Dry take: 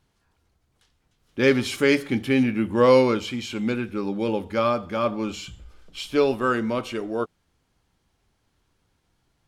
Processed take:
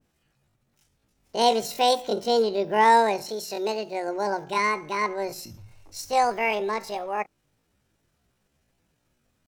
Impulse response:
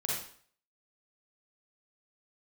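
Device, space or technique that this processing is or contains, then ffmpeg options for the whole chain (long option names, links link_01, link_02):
chipmunk voice: -filter_complex "[0:a]asettb=1/sr,asplit=3[link_01][link_02][link_03];[link_01]atrim=end=3.274[link_04];[link_02]atrim=start=3.27:end=4.08,asetpts=PTS-STARTPTS,afade=type=in:duration=0.004:curve=qsin,afade=type=out:start_time=0.806:duration=0.004:curve=qsin,highpass=frequency=100:poles=1[link_05];[link_03]atrim=start=4.076[link_06];[link_04][link_05]acrossfade=duration=0.004:curve1=hsin:curve2=qsin[link_07];[link_07][link_06]acrossfade=duration=0.004:curve1=qsin:curve2=hsin,asetrate=78577,aresample=44100,atempo=0.561231,adynamicequalizer=threshold=0.02:dfrequency=1700:dqfactor=0.7:tfrequency=1700:tqfactor=0.7:attack=5:release=100:ratio=0.375:range=2:mode=cutabove:tftype=highshelf,volume=-1.5dB"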